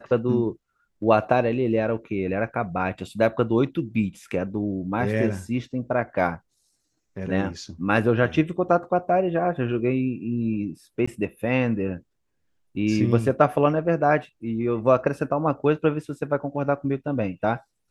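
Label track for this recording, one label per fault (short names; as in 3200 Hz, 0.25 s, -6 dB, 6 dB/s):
11.060000	11.070000	gap 15 ms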